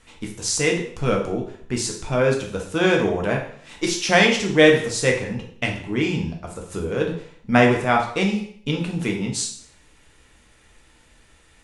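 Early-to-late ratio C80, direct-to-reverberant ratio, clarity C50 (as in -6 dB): 11.0 dB, 0.5 dB, 6.5 dB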